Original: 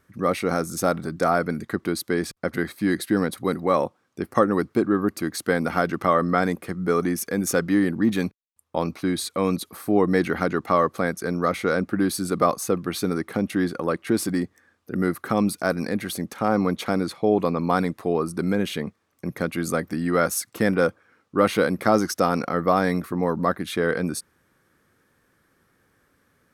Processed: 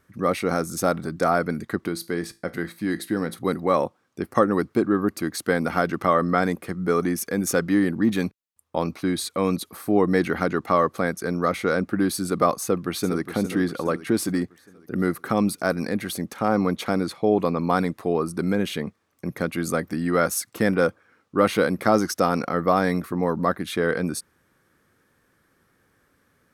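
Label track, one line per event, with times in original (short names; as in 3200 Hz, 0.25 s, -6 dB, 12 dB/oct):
1.880000	3.390000	resonator 56 Hz, decay 0.3 s, mix 50%
12.620000	13.280000	echo throw 0.41 s, feedback 50%, level -9.5 dB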